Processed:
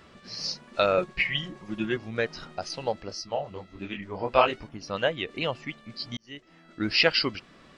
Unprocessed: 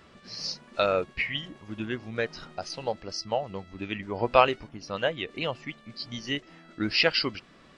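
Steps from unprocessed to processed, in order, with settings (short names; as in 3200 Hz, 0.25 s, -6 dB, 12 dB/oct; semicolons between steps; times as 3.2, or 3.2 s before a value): 0.97–1.97 comb 5.6 ms, depth 72%; 3.09–4.51 detuned doubles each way 56 cents -> 44 cents; 6.17–6.95 fade in; gain +1.5 dB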